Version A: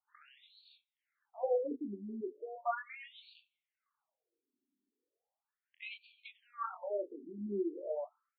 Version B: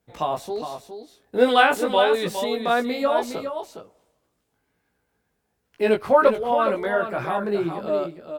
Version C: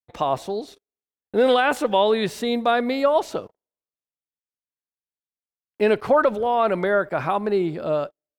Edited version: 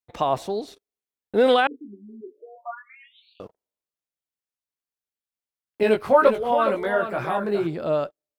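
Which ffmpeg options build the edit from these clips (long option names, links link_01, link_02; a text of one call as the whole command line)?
ffmpeg -i take0.wav -i take1.wav -i take2.wav -filter_complex "[2:a]asplit=3[link_01][link_02][link_03];[link_01]atrim=end=1.672[link_04];[0:a]atrim=start=1.668:end=3.402[link_05];[link_02]atrim=start=3.398:end=5.832[link_06];[1:a]atrim=start=5.828:end=7.672[link_07];[link_03]atrim=start=7.668[link_08];[link_04][link_05]acrossfade=duration=0.004:curve1=hsin:curve2=hsin[link_09];[link_09][link_06]acrossfade=duration=0.004:curve1=hsin:curve2=hsin[link_10];[link_10][link_07]acrossfade=duration=0.004:curve1=hsin:curve2=hsin[link_11];[link_11][link_08]acrossfade=duration=0.004:curve1=hsin:curve2=hsin" out.wav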